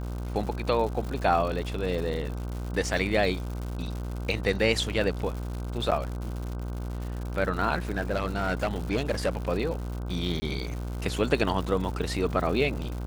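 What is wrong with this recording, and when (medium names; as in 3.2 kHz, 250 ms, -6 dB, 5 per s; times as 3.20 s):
buzz 60 Hz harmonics 26 -33 dBFS
crackle 180 per s -34 dBFS
5.91–5.92 s: dropout 7.4 ms
7.91–9.37 s: clipped -20.5 dBFS
10.40–10.42 s: dropout 20 ms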